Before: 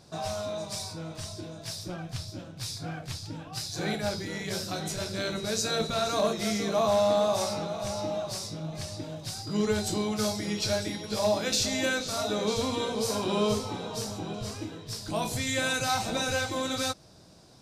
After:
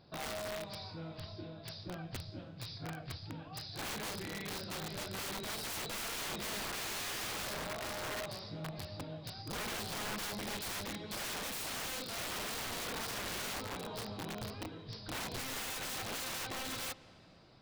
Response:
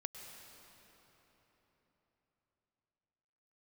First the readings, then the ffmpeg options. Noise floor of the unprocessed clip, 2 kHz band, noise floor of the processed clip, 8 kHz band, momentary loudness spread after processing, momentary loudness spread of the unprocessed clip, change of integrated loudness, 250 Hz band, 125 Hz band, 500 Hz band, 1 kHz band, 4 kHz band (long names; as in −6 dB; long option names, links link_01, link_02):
−46 dBFS, −6.5 dB, −52 dBFS, −8.0 dB, 8 LU, 12 LU, −10.0 dB, −13.5 dB, −10.0 dB, −16.0 dB, −10.0 dB, −8.0 dB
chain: -filter_complex "[0:a]aresample=11025,aresample=44100,aeval=exprs='(mod(25.1*val(0)+1,2)-1)/25.1':channel_layout=same,asplit=2[link_01][link_02];[1:a]atrim=start_sample=2205,lowpass=4900[link_03];[link_02][link_03]afir=irnorm=-1:irlink=0,volume=-9.5dB[link_04];[link_01][link_04]amix=inputs=2:normalize=0,volume=-8dB"